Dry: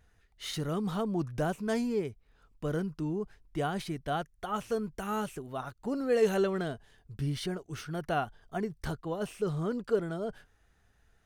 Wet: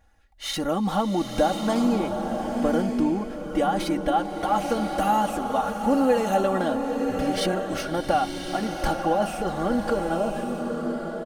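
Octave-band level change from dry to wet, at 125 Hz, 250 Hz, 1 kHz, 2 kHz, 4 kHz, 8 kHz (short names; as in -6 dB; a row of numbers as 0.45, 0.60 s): +1.5, +10.0, +13.5, +7.5, +9.5, +9.5 dB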